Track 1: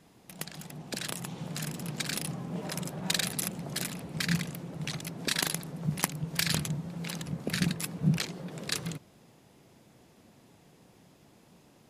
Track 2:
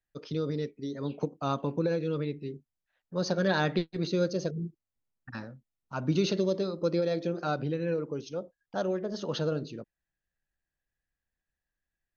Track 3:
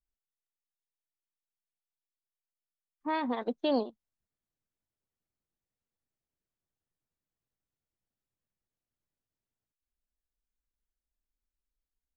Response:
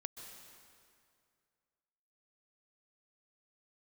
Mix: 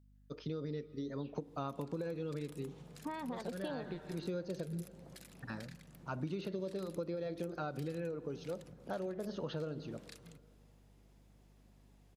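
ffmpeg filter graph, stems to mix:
-filter_complex "[0:a]acompressor=threshold=-40dB:ratio=6,adelay=1400,volume=-12dB[a];[1:a]acrossover=split=3500[b][c];[c]acompressor=threshold=-55dB:ratio=4:attack=1:release=60[d];[b][d]amix=inputs=2:normalize=0,adelay=150,volume=-5dB,asplit=2[e][f];[f]volume=-11.5dB[g];[2:a]acompressor=threshold=-40dB:ratio=3,volume=1.5dB,asplit=2[h][i];[i]apad=whole_len=542871[j];[e][j]sidechaincompress=threshold=-54dB:ratio=8:attack=16:release=390[k];[3:a]atrim=start_sample=2205[l];[g][l]afir=irnorm=-1:irlink=0[m];[a][k][h][m]amix=inputs=4:normalize=0,aeval=exprs='val(0)+0.000708*(sin(2*PI*50*n/s)+sin(2*PI*2*50*n/s)/2+sin(2*PI*3*50*n/s)/3+sin(2*PI*4*50*n/s)/4+sin(2*PI*5*50*n/s)/5)':c=same,acompressor=threshold=-36dB:ratio=6"

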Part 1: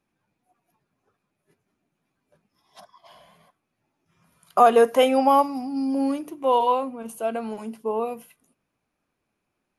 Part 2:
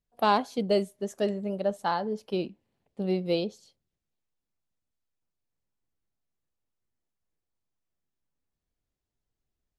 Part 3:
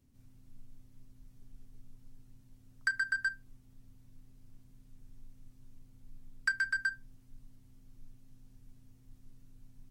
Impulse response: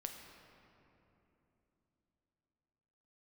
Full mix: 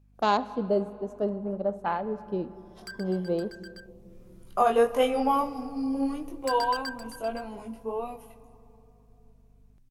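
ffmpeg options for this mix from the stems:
-filter_complex "[0:a]flanger=delay=19.5:depth=3.2:speed=1.6,aeval=exprs='val(0)+0.00178*(sin(2*PI*50*n/s)+sin(2*PI*2*50*n/s)/2+sin(2*PI*3*50*n/s)/3+sin(2*PI*4*50*n/s)/4+sin(2*PI*5*50*n/s)/5)':c=same,volume=-6dB,asplit=2[a][b];[b]volume=-5.5dB[c];[1:a]afwtdn=0.0112,volume=-3.5dB,asplit=3[d][e][f];[e]volume=-5dB[g];[2:a]dynaudnorm=f=230:g=21:m=11.5dB,aeval=exprs='0.0944*(abs(mod(val(0)/0.0944+3,4)-2)-1)':c=same,volume=-8.5dB,asplit=2[h][i];[i]volume=-12.5dB[j];[f]apad=whole_len=436780[k];[h][k]sidechaincompress=threshold=-43dB:ratio=4:attack=8.5:release=729[l];[3:a]atrim=start_sample=2205[m];[c][g]amix=inputs=2:normalize=0[n];[n][m]afir=irnorm=-1:irlink=0[o];[j]aecho=0:1:516:1[p];[a][d][l][o][p]amix=inputs=5:normalize=0"

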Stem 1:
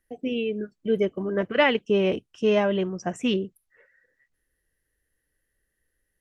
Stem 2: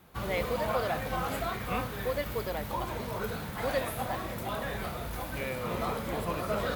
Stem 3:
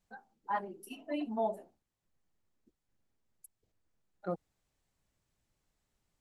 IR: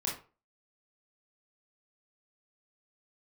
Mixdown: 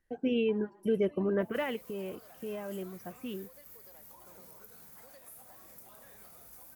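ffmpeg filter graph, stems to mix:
-filter_complex "[0:a]lowpass=f=2.4k:p=1,alimiter=limit=-18.5dB:level=0:latency=1:release=100,volume=-1dB,afade=t=out:st=1.29:d=0.63:silence=0.251189[a];[1:a]acompressor=threshold=-33dB:ratio=6,aexciter=amount=5.9:drive=3.9:freq=5.1k,adelay=1400,volume=-13.5dB[b];[2:a]acompressor=threshold=-40dB:ratio=6,volume=-10dB,asplit=2[c][d];[d]volume=-6dB[e];[b][c]amix=inputs=2:normalize=0,equalizer=f=72:w=0.65:g=-8.5,acompressor=threshold=-56dB:ratio=2,volume=0dB[f];[e]aecho=0:1:110|220|330|440|550:1|0.38|0.144|0.0549|0.0209[g];[a][f][g]amix=inputs=3:normalize=0"

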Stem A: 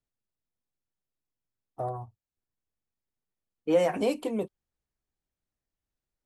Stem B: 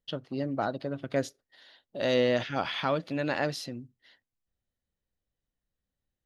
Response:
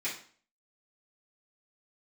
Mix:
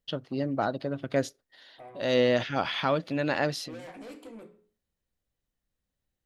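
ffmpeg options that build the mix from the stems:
-filter_complex "[0:a]bandreject=f=60:t=h:w=6,bandreject=f=120:t=h:w=6,bandreject=f=180:t=h:w=6,bandreject=f=240:t=h:w=6,bandreject=f=300:t=h:w=6,bandreject=f=360:t=h:w=6,bandreject=f=420:t=h:w=6,bandreject=f=480:t=h:w=6,bandreject=f=540:t=h:w=6,asoftclip=type=tanh:threshold=-31dB,volume=-12dB,asplit=3[a][b][c];[b]volume=-7dB[d];[1:a]volume=2dB[e];[c]apad=whole_len=275683[f];[e][f]sidechaincompress=threshold=-53dB:ratio=8:attack=8.5:release=342[g];[2:a]atrim=start_sample=2205[h];[d][h]afir=irnorm=-1:irlink=0[i];[a][g][i]amix=inputs=3:normalize=0"

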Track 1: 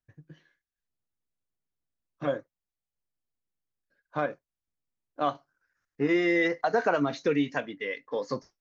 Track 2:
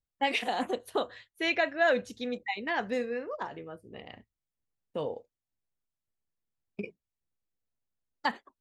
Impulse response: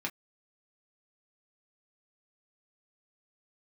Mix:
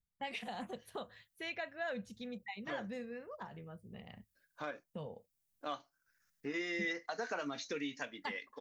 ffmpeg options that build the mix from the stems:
-filter_complex "[0:a]crystalizer=i=6.5:c=0,adelay=450,volume=-9dB,asplit=2[a][b];[b]volume=-11.5dB[c];[1:a]lowshelf=f=240:t=q:w=3:g=6,volume=-5dB[d];[2:a]atrim=start_sample=2205[e];[c][e]afir=irnorm=-1:irlink=0[f];[a][d][f]amix=inputs=3:normalize=0,acompressor=threshold=-53dB:ratio=1.5"

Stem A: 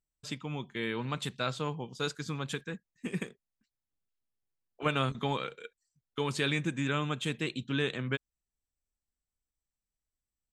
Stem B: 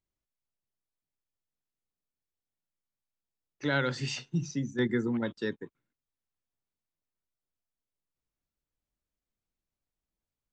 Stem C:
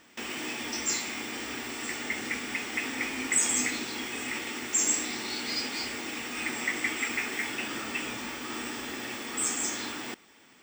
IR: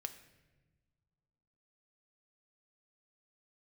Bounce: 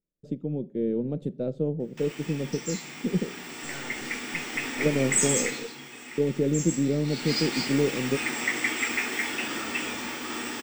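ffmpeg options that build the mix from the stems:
-filter_complex "[0:a]aeval=exprs='if(lt(val(0),0),0.708*val(0),val(0))':c=same,firequalizer=gain_entry='entry(110,0);entry(170,13);entry(540,12);entry(1000,-20)':delay=0.05:min_phase=1,volume=-4dB,asplit=2[a][b];[b]volume=-8.5dB[c];[1:a]aeval=exprs='max(val(0),0)':c=same,volume=-10.5dB[d];[2:a]dynaudnorm=f=340:g=11:m=10dB,bandreject=f=60:t=h:w=6,bandreject=f=120:t=h:w=6,adelay=1800,volume=1dB,afade=t=out:st=5.36:d=0.41:silence=0.316228,afade=t=in:st=7.03:d=0.34:silence=0.281838,asplit=2[e][f];[f]volume=-6.5dB[g];[3:a]atrim=start_sample=2205[h];[c][g]amix=inputs=2:normalize=0[i];[i][h]afir=irnorm=-1:irlink=0[j];[a][d][e][j]amix=inputs=4:normalize=0"

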